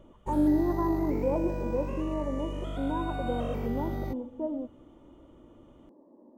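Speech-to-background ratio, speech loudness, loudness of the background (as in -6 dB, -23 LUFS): 4.5 dB, -31.5 LUFS, -36.0 LUFS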